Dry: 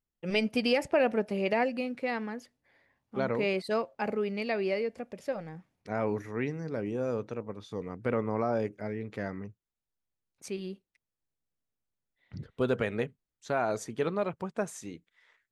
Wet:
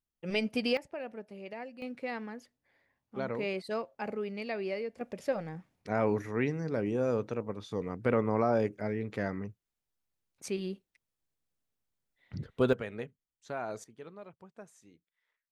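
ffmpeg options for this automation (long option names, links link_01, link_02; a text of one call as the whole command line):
ffmpeg -i in.wav -af "asetnsamples=nb_out_samples=441:pad=0,asendcmd='0.77 volume volume -15dB;1.82 volume volume -5dB;5.01 volume volume 2dB;12.73 volume volume -8dB;13.84 volume volume -17.5dB',volume=-3dB" out.wav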